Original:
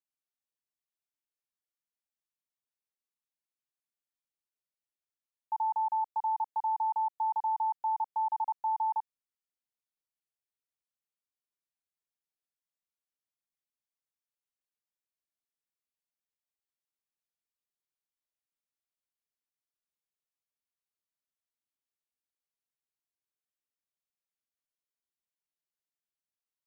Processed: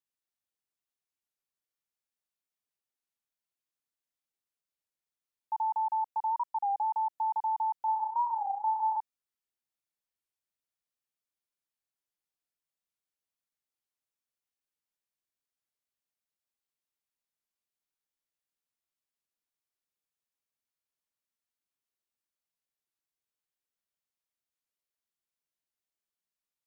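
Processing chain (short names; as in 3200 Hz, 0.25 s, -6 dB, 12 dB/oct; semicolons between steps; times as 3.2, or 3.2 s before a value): 7.85–8.97 flutter echo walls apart 5.5 m, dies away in 0.61 s; record warp 33 1/3 rpm, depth 160 cents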